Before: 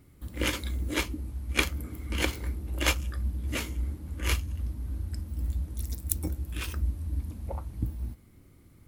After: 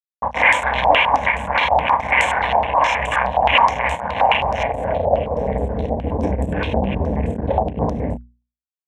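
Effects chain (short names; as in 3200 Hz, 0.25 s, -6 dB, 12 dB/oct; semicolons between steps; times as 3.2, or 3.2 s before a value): thinning echo 0.306 s, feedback 38%, high-pass 280 Hz, level -14 dB; fuzz box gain 36 dB, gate -39 dBFS; notches 60/120/180/240 Hz; band-pass sweep 990 Hz -> 360 Hz, 4.05–5.92; fixed phaser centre 1300 Hz, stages 6; doubler 31 ms -10 dB; maximiser +26.5 dB; stepped low-pass 9.5 Hz 760–7900 Hz; gain -8.5 dB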